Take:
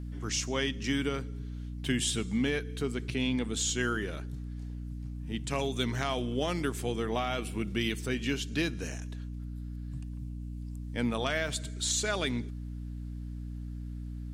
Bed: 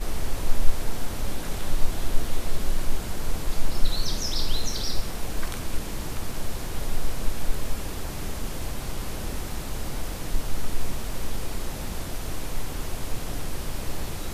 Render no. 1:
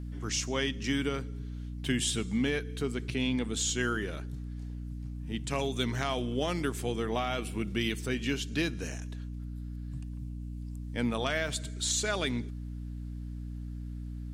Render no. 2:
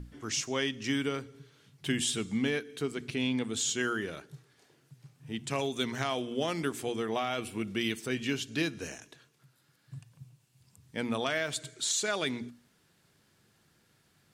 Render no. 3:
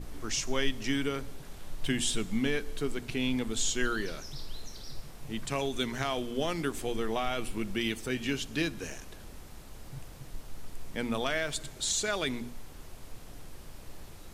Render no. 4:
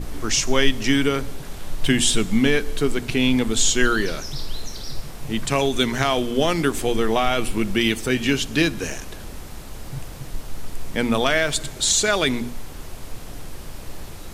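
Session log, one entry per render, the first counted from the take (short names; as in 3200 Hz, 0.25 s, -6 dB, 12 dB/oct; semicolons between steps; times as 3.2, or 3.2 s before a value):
nothing audible
notches 60/120/180/240/300 Hz
add bed -16 dB
gain +11.5 dB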